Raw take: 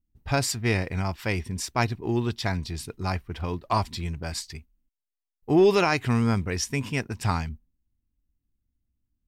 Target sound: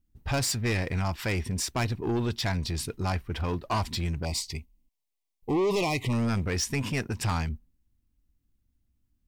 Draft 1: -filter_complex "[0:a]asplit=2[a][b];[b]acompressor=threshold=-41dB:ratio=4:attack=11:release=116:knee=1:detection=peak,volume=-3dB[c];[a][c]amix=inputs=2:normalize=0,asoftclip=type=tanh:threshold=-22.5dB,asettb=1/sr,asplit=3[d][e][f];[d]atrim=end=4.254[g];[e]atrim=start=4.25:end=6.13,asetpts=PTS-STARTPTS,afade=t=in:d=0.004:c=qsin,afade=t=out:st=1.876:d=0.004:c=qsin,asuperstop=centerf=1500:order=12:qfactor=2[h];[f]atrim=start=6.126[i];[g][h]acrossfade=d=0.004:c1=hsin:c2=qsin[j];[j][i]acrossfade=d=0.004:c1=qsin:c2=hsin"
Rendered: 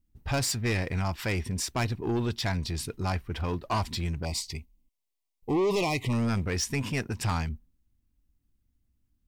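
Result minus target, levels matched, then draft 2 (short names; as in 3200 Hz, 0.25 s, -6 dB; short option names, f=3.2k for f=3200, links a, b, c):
compressor: peak gain reduction +6 dB
-filter_complex "[0:a]asplit=2[a][b];[b]acompressor=threshold=-33dB:ratio=4:attack=11:release=116:knee=1:detection=peak,volume=-3dB[c];[a][c]amix=inputs=2:normalize=0,asoftclip=type=tanh:threshold=-22.5dB,asettb=1/sr,asplit=3[d][e][f];[d]atrim=end=4.254[g];[e]atrim=start=4.25:end=6.13,asetpts=PTS-STARTPTS,afade=t=in:d=0.004:c=qsin,afade=t=out:st=1.876:d=0.004:c=qsin,asuperstop=centerf=1500:order=12:qfactor=2[h];[f]atrim=start=6.126[i];[g][h]acrossfade=d=0.004:c1=hsin:c2=qsin[j];[j][i]acrossfade=d=0.004:c1=qsin:c2=hsin"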